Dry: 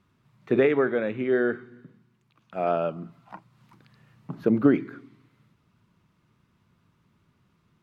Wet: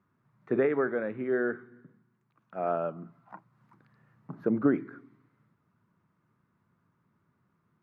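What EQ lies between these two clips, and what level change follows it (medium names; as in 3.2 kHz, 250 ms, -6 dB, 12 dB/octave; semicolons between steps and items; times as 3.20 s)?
high-pass 100 Hz; resonant high shelf 2.2 kHz -9.5 dB, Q 1.5; -5.5 dB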